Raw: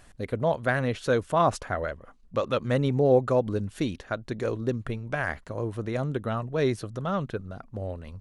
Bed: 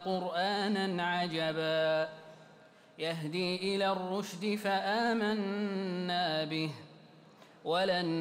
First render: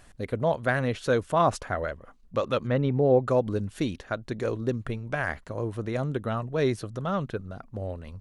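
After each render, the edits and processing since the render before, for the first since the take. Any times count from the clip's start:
0:02.67–0:03.27: high-frequency loss of the air 220 metres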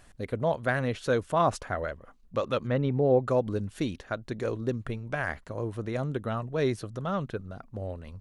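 level −2 dB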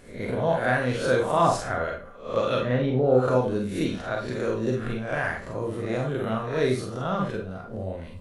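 peak hold with a rise ahead of every peak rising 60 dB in 0.50 s
four-comb reverb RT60 0.31 s, combs from 32 ms, DRR 0.5 dB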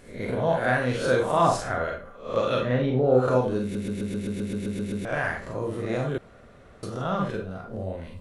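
0:03.62: stutter in place 0.13 s, 11 plays
0:06.18–0:06.83: fill with room tone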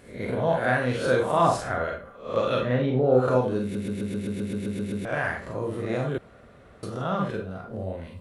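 high-pass filter 40 Hz
parametric band 6,200 Hz −3.5 dB 0.77 octaves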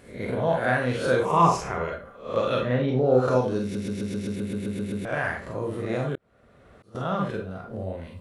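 0:01.25–0:01.92: EQ curve with evenly spaced ripples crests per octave 0.77, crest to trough 11 dB
0:02.88–0:04.36: parametric band 5,500 Hz +11 dB 0.53 octaves
0:06.15–0:06.95: volume swells 633 ms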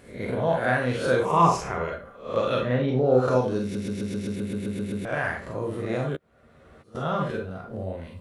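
0:06.13–0:07.50: double-tracking delay 13 ms −5.5 dB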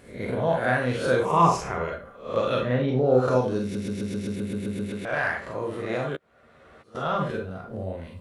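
0:04.89–0:07.18: mid-hump overdrive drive 8 dB, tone 4,800 Hz, clips at −14.5 dBFS

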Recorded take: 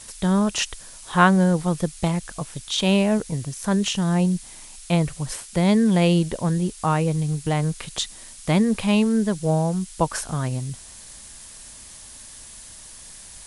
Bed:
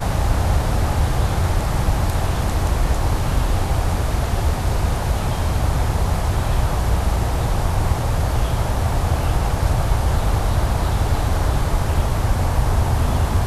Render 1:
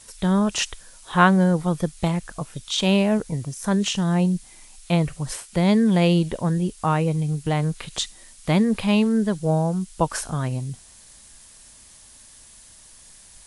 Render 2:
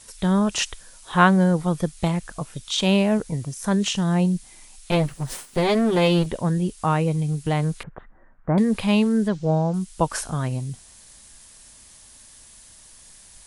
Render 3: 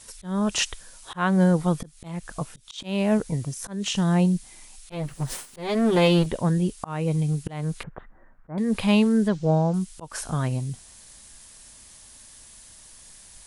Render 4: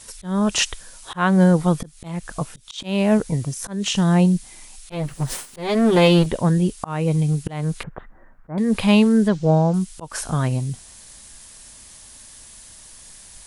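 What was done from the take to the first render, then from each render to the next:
noise reduction from a noise print 6 dB
0:04.91–0:06.26: lower of the sound and its delayed copy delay 7.7 ms; 0:07.83–0:08.58: elliptic low-pass filter 1,600 Hz, stop band 70 dB; 0:09.28–0:09.74: low-pass filter 6,200 Hz 24 dB per octave
volume swells 300 ms
level +4.5 dB

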